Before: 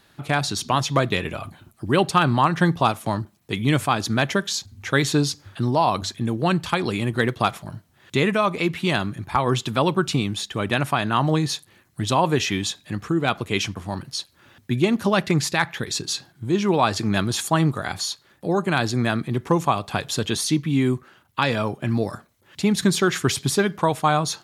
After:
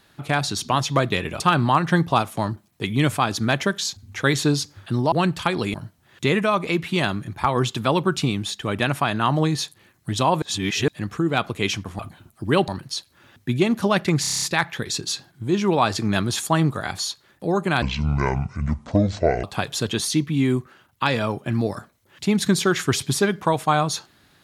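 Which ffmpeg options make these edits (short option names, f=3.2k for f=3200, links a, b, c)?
-filter_complex "[0:a]asplit=17[a][b][c][d][e][f][g][h][i][j][k][l][m][n][o][p][q];[a]atrim=end=1.402[r];[b]atrim=start=2.088:end=5.812[s];[c]atrim=start=6.388:end=7.012[t];[d]atrim=start=7.648:end=12.332[u];[e]atrim=start=12.328:end=12.792,asetpts=PTS-STARTPTS,areverse[v];[f]atrim=start=12.788:end=13.902[w];[g]atrim=start=1.398:end=2.092[x];[h]atrim=start=13.898:end=15.462[y];[i]atrim=start=15.428:end=15.462[z];[j]atrim=start=15.428:end=15.462[aa];[k]atrim=start=15.428:end=15.462[ab];[l]atrim=start=15.428:end=15.462[ac];[m]atrim=start=15.428:end=15.462[ad];[n]atrim=start=15.428:end=15.462[ae];[o]atrim=start=15.428:end=18.834[af];[p]atrim=start=18.83:end=19.8,asetpts=PTS-STARTPTS,asetrate=26460,aresample=44100[ag];[q]atrim=start=19.796[ah];[r][s]acrossfade=d=0.004:c1=hsin:c2=hsin[ai];[ai][t]acrossfade=d=0.004:c1=hsin:c2=hsin[aj];[aj][u]acrossfade=d=0.004:c1=hsin:c2=hsin[ak];[ak][v]acrossfade=d=0.004:c1=hsin:c2=hsin[al];[al][w]acrossfade=d=0.004:c1=hsin:c2=hsin[am];[am][x]acrossfade=d=0.004:c1=hsin:c2=hsin[an];[an][y]acrossfade=d=0.004:c1=hsin:c2=hsin[ao];[ao][z]acrossfade=d=0.004:c1=hsin:c2=hsin[ap];[ap][aa]acrossfade=d=0.004:c1=hsin:c2=hsin[aq];[aq][ab]acrossfade=d=0.004:c1=hsin:c2=hsin[ar];[ar][ac]acrossfade=d=0.004:c1=hsin:c2=hsin[as];[as][ad]acrossfade=d=0.004:c1=hsin:c2=hsin[at];[at][ae]acrossfade=d=0.004:c1=hsin:c2=hsin[au];[au][af]acrossfade=d=0.004:c1=hsin:c2=hsin[av];[av][ag]acrossfade=d=0.004:c1=hsin:c2=hsin[aw];[aw][ah]acrossfade=d=0.004:c1=hsin:c2=hsin"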